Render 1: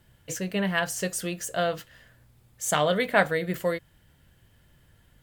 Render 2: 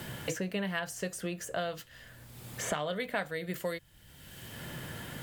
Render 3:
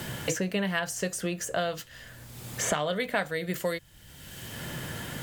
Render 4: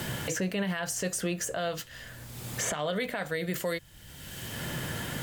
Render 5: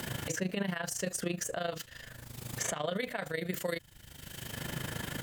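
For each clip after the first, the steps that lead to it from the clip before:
multiband upward and downward compressor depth 100%; level −8 dB
parametric band 6,400 Hz +3.5 dB 0.82 octaves; level +5 dB
brickwall limiter −23 dBFS, peak gain reduction 11 dB; level +2 dB
amplitude modulation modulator 26 Hz, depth 65%

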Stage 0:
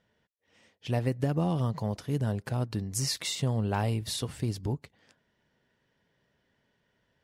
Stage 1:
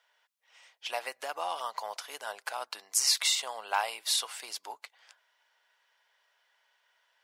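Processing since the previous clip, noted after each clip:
high-pass filter 790 Hz 24 dB per octave
notch filter 1,800 Hz, Q 15
level +6.5 dB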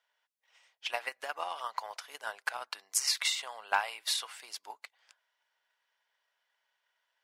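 dynamic equaliser 1,800 Hz, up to +8 dB, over −47 dBFS, Q 0.71
transient designer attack +7 dB, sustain +1 dB
level −9 dB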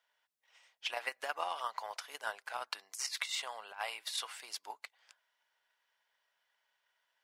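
compressor whose output falls as the input rises −34 dBFS, ratio −0.5
level −2.5 dB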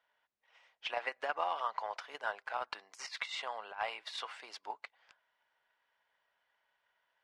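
in parallel at −4 dB: gain into a clipping stage and back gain 30.5 dB
on the sum: head-to-tape spacing loss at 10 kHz 25 dB
level +1.5 dB

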